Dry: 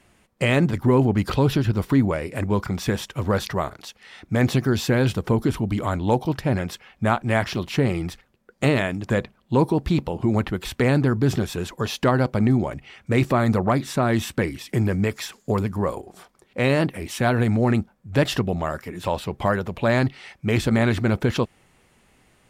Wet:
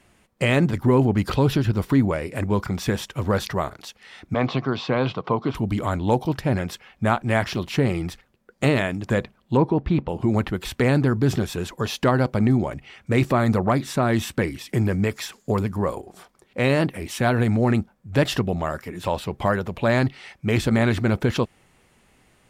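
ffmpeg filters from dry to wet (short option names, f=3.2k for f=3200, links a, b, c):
-filter_complex "[0:a]asettb=1/sr,asplit=3[a][b][c];[a]atrim=end=4.344[d];[b]atrim=start=4.34:end=5.55,asetpts=PTS-STARTPTS,afade=t=in:d=0.004:c=qsin,afade=t=out:st=1.206:d=0.004:c=qsin,highpass=f=140:w=0.5412,highpass=f=140:w=1.3066,equalizer=f=210:t=q:w=4:g=-8,equalizer=f=350:t=q:w=4:g=-5,equalizer=f=700:t=q:w=4:g=4,equalizer=f=1.1k:t=q:w=4:g=10,equalizer=f=1.7k:t=q:w=4:g=-7,lowpass=f=4.2k:w=0.5412,lowpass=f=4.2k:w=1.3066[e];[c]atrim=start=5.546[f];[d][e]acrossfade=d=0.004:c1=hsin:c2=qsin[g];[g][f]acrossfade=d=0.004:c1=qsin:c2=hsin,asettb=1/sr,asplit=3[h][i][j];[h]atrim=end=9.574[k];[i]atrim=start=9.57:end=10.09,asetpts=PTS-STARTPTS,afade=t=in:d=0.004:c=qsin,afade=t=out:st=0.516:d=0.004:c=qsin,lowpass=2.5k[l];[j]atrim=start=10.086[m];[k][l]acrossfade=d=0.004:c1=hsin:c2=qsin[n];[n][m]acrossfade=d=0.004:c1=qsin:c2=hsin"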